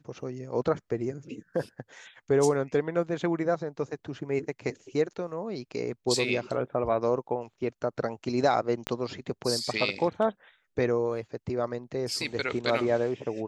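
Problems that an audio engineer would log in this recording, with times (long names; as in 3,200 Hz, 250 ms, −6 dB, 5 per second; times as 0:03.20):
0:08.87: click −14 dBFS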